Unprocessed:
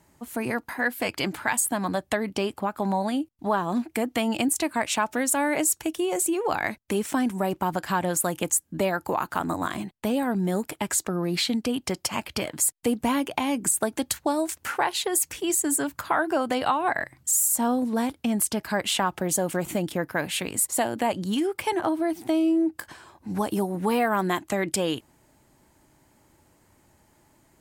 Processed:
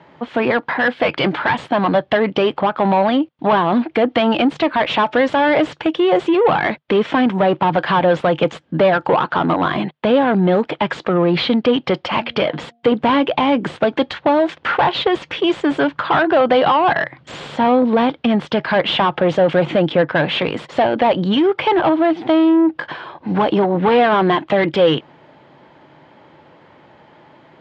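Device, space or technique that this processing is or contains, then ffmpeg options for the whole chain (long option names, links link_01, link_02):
overdrive pedal into a guitar cabinet: -filter_complex "[0:a]asplit=2[link_01][link_02];[link_02]highpass=frequency=720:poles=1,volume=22dB,asoftclip=type=tanh:threshold=-10dB[link_03];[link_01][link_03]amix=inputs=2:normalize=0,lowpass=frequency=1300:poles=1,volume=-6dB,highpass=76,equalizer=frequency=150:width_type=q:width=4:gain=9,equalizer=frequency=510:width_type=q:width=4:gain=5,equalizer=frequency=3300:width_type=q:width=4:gain=6,lowpass=frequency=4100:width=0.5412,lowpass=frequency=4100:width=1.3066,asettb=1/sr,asplit=3[link_04][link_05][link_06];[link_04]atrim=end=12.104[link_07];[link_05]atrim=start=12.1:end=12.92,asetpts=PTS-STARTPTS,afade=type=in:duration=0.004:curve=qsin,afade=type=out:start_time=0.816:duration=0.004:curve=qsin,bandreject=frequency=234.6:width_type=h:width=4,bandreject=frequency=469.2:width_type=h:width=4,bandreject=frequency=703.8:width_type=h:width=4[link_08];[link_06]atrim=start=12.916[link_09];[link_07][link_08]acrossfade=duration=0.004:curve1=hsin:curve2=qsin[link_10];[link_10][link_09]acrossfade=duration=0.004:curve1=qsin:curve2=hsin,volume=4.5dB"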